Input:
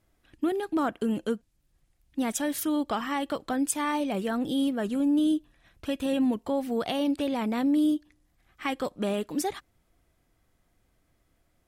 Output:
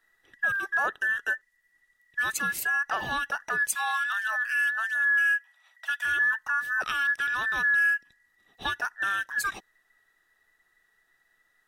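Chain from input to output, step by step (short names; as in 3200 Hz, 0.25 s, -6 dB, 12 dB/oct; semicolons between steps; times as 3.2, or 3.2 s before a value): band inversion scrambler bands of 2000 Hz; 3.75–6.05 steep high-pass 650 Hz 48 dB/oct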